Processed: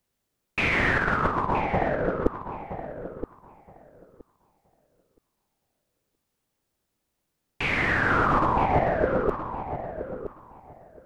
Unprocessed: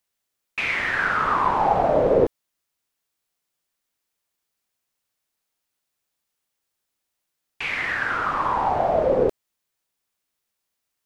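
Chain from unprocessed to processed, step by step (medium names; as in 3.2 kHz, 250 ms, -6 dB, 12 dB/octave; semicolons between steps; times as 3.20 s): compressor with a negative ratio -24 dBFS, ratio -0.5; tilt shelf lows +7.5 dB, about 630 Hz; filtered feedback delay 971 ms, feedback 17%, low-pass 2.8 kHz, level -10 dB; trim +3 dB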